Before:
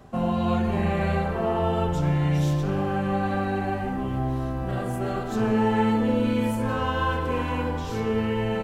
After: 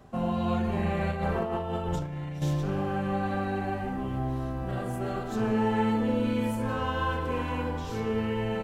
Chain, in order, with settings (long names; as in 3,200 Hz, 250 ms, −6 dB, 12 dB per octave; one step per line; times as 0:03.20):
0:01.11–0:02.42: compressor whose output falls as the input rises −26 dBFS, ratio −0.5
level −4 dB